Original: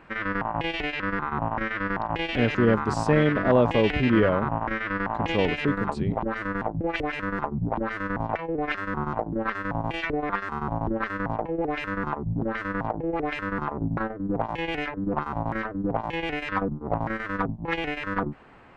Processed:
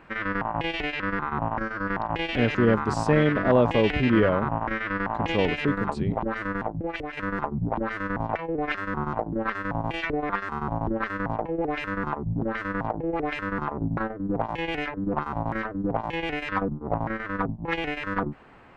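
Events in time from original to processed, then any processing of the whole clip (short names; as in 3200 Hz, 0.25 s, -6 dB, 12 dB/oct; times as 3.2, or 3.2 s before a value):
1.59–1.88 spectral gain 1700–4100 Hz -12 dB
6.51–7.17 fade out, to -7.5 dB
16.74–17.69 LPF 3000 Hz 6 dB/oct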